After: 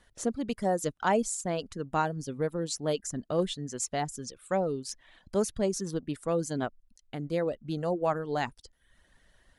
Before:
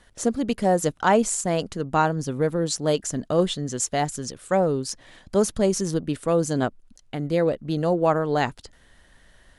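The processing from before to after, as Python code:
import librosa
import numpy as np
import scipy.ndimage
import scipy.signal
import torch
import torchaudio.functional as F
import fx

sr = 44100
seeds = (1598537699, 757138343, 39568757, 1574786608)

y = fx.dereverb_blind(x, sr, rt60_s=0.64)
y = y * librosa.db_to_amplitude(-7.0)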